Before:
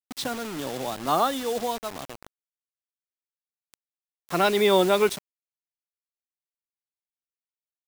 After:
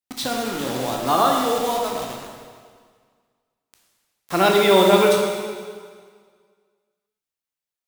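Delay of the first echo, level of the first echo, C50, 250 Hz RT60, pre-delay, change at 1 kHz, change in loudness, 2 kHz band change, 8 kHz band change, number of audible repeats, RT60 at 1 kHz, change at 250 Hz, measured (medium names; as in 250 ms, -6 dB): no echo, no echo, 2.0 dB, 1.8 s, 6 ms, +6.0 dB, +5.0 dB, +5.5 dB, +6.0 dB, no echo, 1.8 s, +6.0 dB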